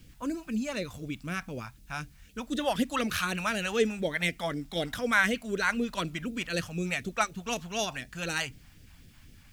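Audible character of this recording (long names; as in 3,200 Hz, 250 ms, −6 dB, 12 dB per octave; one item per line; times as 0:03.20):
a quantiser's noise floor 12 bits, dither triangular
phaser sweep stages 2, 4 Hz, lowest notch 360–1,000 Hz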